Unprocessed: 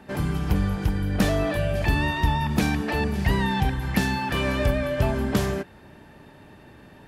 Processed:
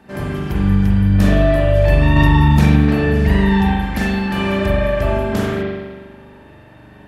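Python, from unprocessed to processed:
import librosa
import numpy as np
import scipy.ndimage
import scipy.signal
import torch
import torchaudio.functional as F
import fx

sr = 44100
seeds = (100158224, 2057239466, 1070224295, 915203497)

y = fx.rev_spring(x, sr, rt60_s=1.4, pass_ms=(41,), chirp_ms=75, drr_db=-5.5)
y = fx.env_flatten(y, sr, amount_pct=100, at=(2.16, 2.76))
y = F.gain(torch.from_numpy(y), -1.0).numpy()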